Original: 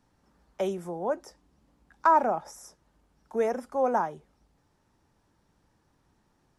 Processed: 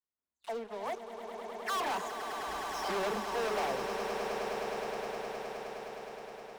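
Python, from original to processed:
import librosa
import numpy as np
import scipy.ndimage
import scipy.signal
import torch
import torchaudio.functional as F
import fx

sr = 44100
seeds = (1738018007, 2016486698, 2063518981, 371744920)

y = fx.spec_delay(x, sr, highs='early', ms=247)
y = fx.doppler_pass(y, sr, speed_mps=56, closest_m=5.9, pass_at_s=2.55)
y = scipy.signal.sosfilt(scipy.signal.butter(4, 6000.0, 'lowpass', fs=sr, output='sos'), y)
y = fx.leveller(y, sr, passes=5)
y = 10.0 ** (-37.0 / 20.0) * np.tanh(y / 10.0 ** (-37.0 / 20.0))
y = fx.bass_treble(y, sr, bass_db=-8, treble_db=-1)
y = fx.echo_swell(y, sr, ms=104, loudest=8, wet_db=-10)
y = F.gain(torch.from_numpy(y), 5.5).numpy()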